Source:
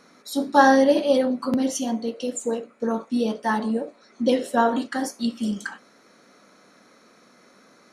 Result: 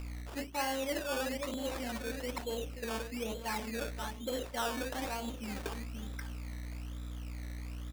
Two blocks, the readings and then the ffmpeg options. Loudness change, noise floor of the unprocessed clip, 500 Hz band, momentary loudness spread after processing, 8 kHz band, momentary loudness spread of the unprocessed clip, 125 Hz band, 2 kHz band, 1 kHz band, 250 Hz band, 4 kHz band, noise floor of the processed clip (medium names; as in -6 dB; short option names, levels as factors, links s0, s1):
-15.5 dB, -56 dBFS, -15.0 dB, 9 LU, -9.0 dB, 12 LU, -0.5 dB, -11.5 dB, -16.0 dB, -17.5 dB, -6.5 dB, -45 dBFS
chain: -filter_complex "[0:a]highshelf=f=5200:g=-6.5,aecho=1:1:532|1064:0.282|0.0451,aexciter=amount=1.2:drive=5.8:freq=6500,asplit=2[s0][s1];[s1]volume=8.41,asoftclip=hard,volume=0.119,volume=0.631[s2];[s0][s2]amix=inputs=2:normalize=0,aeval=exprs='val(0)+0.0398*(sin(2*PI*60*n/s)+sin(2*PI*2*60*n/s)/2+sin(2*PI*3*60*n/s)/3+sin(2*PI*4*60*n/s)/4+sin(2*PI*5*60*n/s)/5)':c=same,areverse,acompressor=threshold=0.0631:ratio=6,areverse,acrusher=samples=17:mix=1:aa=0.000001:lfo=1:lforange=10.2:lforate=1.1,equalizer=f=150:t=o:w=2:g=-10,volume=0.447"